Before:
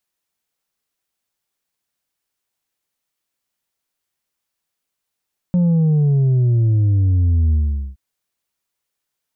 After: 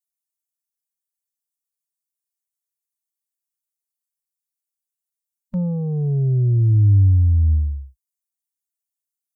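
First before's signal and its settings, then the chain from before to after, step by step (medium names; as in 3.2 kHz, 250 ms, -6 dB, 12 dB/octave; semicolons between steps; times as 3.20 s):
sub drop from 180 Hz, over 2.42 s, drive 3.5 dB, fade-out 0.43 s, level -12.5 dB
expander on every frequency bin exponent 2; graphic EQ with 31 bands 100 Hz +5 dB, 160 Hz -7 dB, 250 Hz -7 dB, 630 Hz -6 dB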